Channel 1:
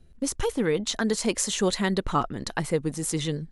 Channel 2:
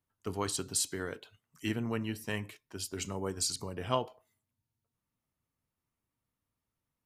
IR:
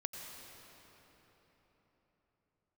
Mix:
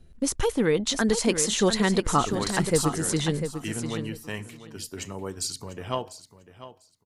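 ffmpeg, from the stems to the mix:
-filter_complex "[0:a]volume=2dB,asplit=2[link_01][link_02];[link_02]volume=-8.5dB[link_03];[1:a]aeval=exprs='0.211*(cos(1*acos(clip(val(0)/0.211,-1,1)))-cos(1*PI/2))+0.0106*(cos(2*acos(clip(val(0)/0.211,-1,1)))-cos(2*PI/2))':channel_layout=same,adelay=2000,volume=1.5dB,asplit=2[link_04][link_05];[link_05]volume=-14.5dB[link_06];[link_03][link_06]amix=inputs=2:normalize=0,aecho=0:1:696|1392|2088:1|0.17|0.0289[link_07];[link_01][link_04][link_07]amix=inputs=3:normalize=0"

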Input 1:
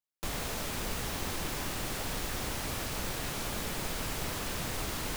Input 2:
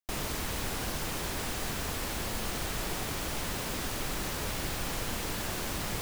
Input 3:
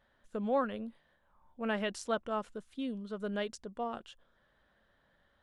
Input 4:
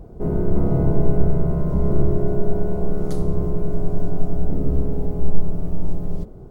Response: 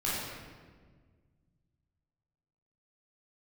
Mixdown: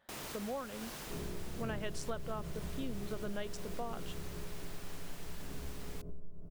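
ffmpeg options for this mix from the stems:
-filter_complex "[0:a]volume=-19dB[link_01];[1:a]volume=-8.5dB,afade=type=out:start_time=0.88:duration=0.44:silence=0.421697[link_02];[2:a]volume=1dB[link_03];[3:a]adelay=900,volume=-18dB[link_04];[link_01][link_04]amix=inputs=2:normalize=0,asuperstop=centerf=790:order=4:qfactor=4.7,acompressor=threshold=-37dB:ratio=6,volume=0dB[link_05];[link_02][link_03]amix=inputs=2:normalize=0,highpass=frequency=180:poles=1,acompressor=threshold=-38dB:ratio=6,volume=0dB[link_06];[link_05][link_06]amix=inputs=2:normalize=0"

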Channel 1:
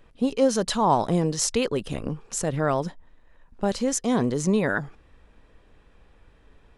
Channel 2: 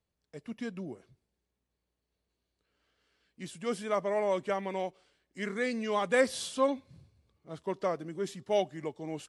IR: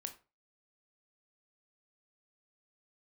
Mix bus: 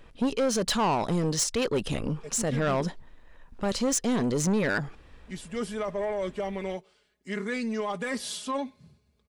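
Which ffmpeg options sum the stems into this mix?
-filter_complex "[0:a]equalizer=frequency=3800:width_type=o:width=2.4:gain=2.5,alimiter=limit=-14dB:level=0:latency=1:release=322,volume=3dB[link_01];[1:a]aecho=1:1:4.8:0.67,alimiter=limit=-22dB:level=0:latency=1:release=11,adelay=1900,volume=1dB[link_02];[link_01][link_02]amix=inputs=2:normalize=0,asoftclip=type=tanh:threshold=-20.5dB"

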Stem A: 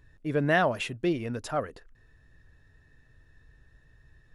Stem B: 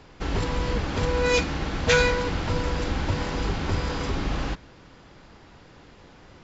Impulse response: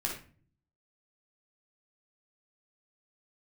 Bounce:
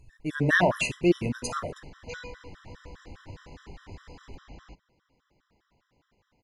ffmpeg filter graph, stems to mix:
-filter_complex "[0:a]equalizer=frequency=6900:width=0.84:gain=9,volume=0dB,asplit=2[link_01][link_02];[link_02]volume=-6dB[link_03];[1:a]adelay=200,volume=-18dB[link_04];[2:a]atrim=start_sample=2205[link_05];[link_03][link_05]afir=irnorm=-1:irlink=0[link_06];[link_01][link_04][link_06]amix=inputs=3:normalize=0,afftfilt=real='re*gt(sin(2*PI*4.9*pts/sr)*(1-2*mod(floor(b*sr/1024/1000),2)),0)':imag='im*gt(sin(2*PI*4.9*pts/sr)*(1-2*mod(floor(b*sr/1024/1000),2)),0)':win_size=1024:overlap=0.75"

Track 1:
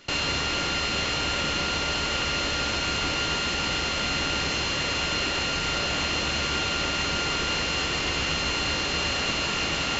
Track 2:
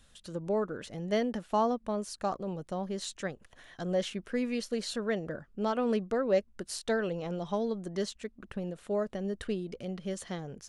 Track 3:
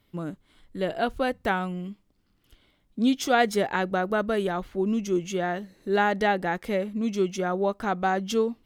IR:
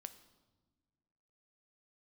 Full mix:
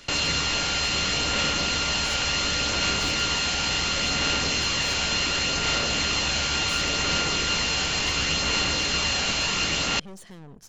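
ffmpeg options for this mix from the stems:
-filter_complex "[0:a]highshelf=frequency=4600:gain=10,bandreject=frequency=360:width=12,volume=-1dB[link_01];[1:a]acompressor=threshold=-36dB:ratio=6,aeval=exprs='(tanh(200*val(0)+0.7)-tanh(0.7))/200':channel_layout=same,volume=2.5dB,asplit=2[link_02][link_03];[link_03]volume=-6.5dB[link_04];[2:a]acompressor=threshold=-31dB:ratio=6,adelay=150,volume=-14dB[link_05];[3:a]atrim=start_sample=2205[link_06];[link_04][link_06]afir=irnorm=-1:irlink=0[link_07];[link_01][link_02][link_05][link_07]amix=inputs=4:normalize=0,aphaser=in_gain=1:out_gain=1:delay=1.3:decay=0.21:speed=0.7:type=sinusoidal"

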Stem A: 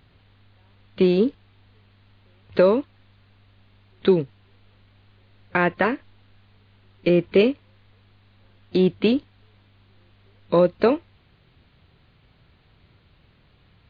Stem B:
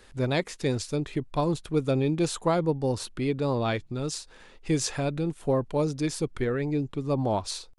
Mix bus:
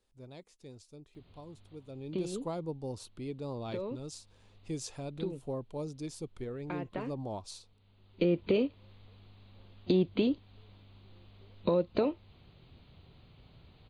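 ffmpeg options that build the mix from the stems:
ffmpeg -i stem1.wav -i stem2.wav -filter_complex "[0:a]acompressor=threshold=-22dB:ratio=2.5,adelay=1150,volume=0.5dB[link_01];[1:a]volume=-12dB,afade=type=in:start_time=1.88:duration=0.47:silence=0.281838,asplit=2[link_02][link_03];[link_03]apad=whole_len=663553[link_04];[link_01][link_04]sidechaincompress=threshold=-49dB:ratio=12:attack=10:release=1040[link_05];[link_05][link_02]amix=inputs=2:normalize=0,equalizer=frequency=1700:width_type=o:width=0.9:gain=-9.5,alimiter=limit=-16.5dB:level=0:latency=1:release=399" out.wav

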